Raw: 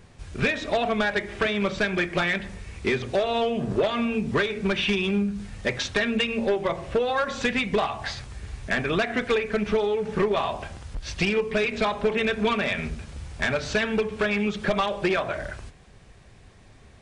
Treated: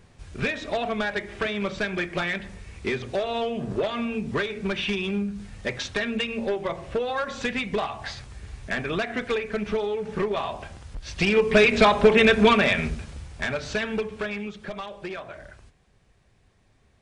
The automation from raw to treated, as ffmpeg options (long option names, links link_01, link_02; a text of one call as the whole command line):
ffmpeg -i in.wav -af "volume=7.5dB,afade=type=in:start_time=11.12:duration=0.47:silence=0.298538,afade=type=out:start_time=12.34:duration=0.95:silence=0.298538,afade=type=out:start_time=13.98:duration=0.61:silence=0.398107" out.wav